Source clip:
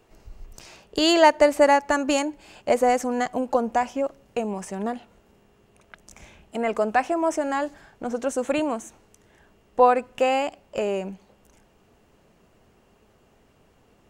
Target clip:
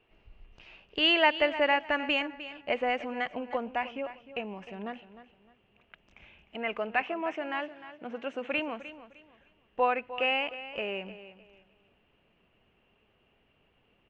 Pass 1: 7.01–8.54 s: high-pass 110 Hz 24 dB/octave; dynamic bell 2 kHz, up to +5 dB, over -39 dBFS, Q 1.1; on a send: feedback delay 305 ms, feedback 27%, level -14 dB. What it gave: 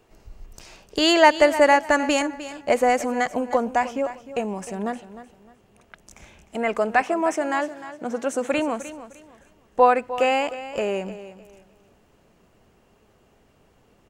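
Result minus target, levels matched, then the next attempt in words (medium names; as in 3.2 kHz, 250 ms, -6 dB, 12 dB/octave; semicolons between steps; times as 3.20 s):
4 kHz band -5.5 dB
7.01–8.54 s: high-pass 110 Hz 24 dB/octave; dynamic bell 2 kHz, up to +5 dB, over -39 dBFS, Q 1.1; four-pole ladder low-pass 3.1 kHz, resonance 65%; on a send: feedback delay 305 ms, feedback 27%, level -14 dB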